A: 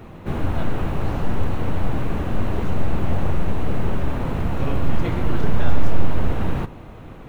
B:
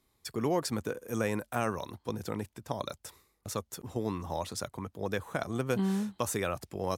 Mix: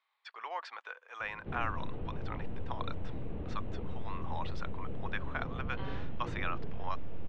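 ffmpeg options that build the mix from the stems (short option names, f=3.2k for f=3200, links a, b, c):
-filter_complex "[0:a]acrossover=split=770|2500[a][b][c];[a]acompressor=threshold=-15dB:ratio=4[d];[b]acompressor=threshold=-53dB:ratio=4[e];[c]acompressor=threshold=-49dB:ratio=4[f];[d][e][f]amix=inputs=3:normalize=0,equalizer=f=470:t=o:w=0.2:g=5.5,adelay=1200,volume=-15dB[g];[1:a]highpass=f=860:w=0.5412,highpass=f=860:w=1.3066,volume=0.5dB[h];[g][h]amix=inputs=2:normalize=0,lowpass=f=3.3k:w=0.5412,lowpass=f=3.3k:w=1.3066"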